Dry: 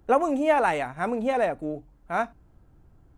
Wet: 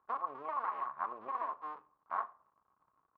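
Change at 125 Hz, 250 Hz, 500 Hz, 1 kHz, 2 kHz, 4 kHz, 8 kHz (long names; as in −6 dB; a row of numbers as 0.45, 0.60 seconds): below −30 dB, −30.5 dB, −24.5 dB, −10.0 dB, −19.0 dB, below −20 dB, can't be measured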